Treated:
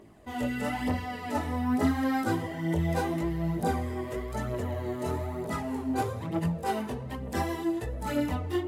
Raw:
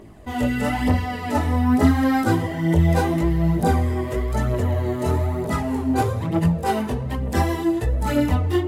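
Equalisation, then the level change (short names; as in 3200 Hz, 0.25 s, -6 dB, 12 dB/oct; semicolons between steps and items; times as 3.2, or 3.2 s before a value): low shelf 93 Hz -10.5 dB; -7.5 dB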